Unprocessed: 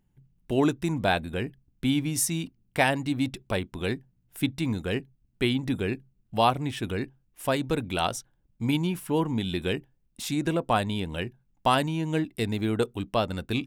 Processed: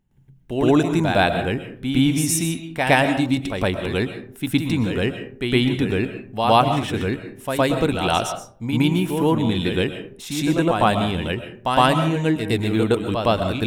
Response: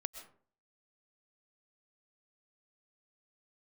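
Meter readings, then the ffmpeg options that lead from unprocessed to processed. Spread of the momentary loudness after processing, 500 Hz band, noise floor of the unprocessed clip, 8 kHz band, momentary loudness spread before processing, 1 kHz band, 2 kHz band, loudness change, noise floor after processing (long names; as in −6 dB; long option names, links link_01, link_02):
10 LU, +8.0 dB, −70 dBFS, +5.5 dB, 9 LU, +8.0 dB, +7.5 dB, +7.5 dB, −45 dBFS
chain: -filter_complex "[0:a]highshelf=frequency=7000:gain=-4,bandreject=frequency=4700:width=15,asplit=2[link_01][link_02];[1:a]atrim=start_sample=2205,adelay=113[link_03];[link_02][link_03]afir=irnorm=-1:irlink=0,volume=8.5dB[link_04];[link_01][link_04]amix=inputs=2:normalize=0"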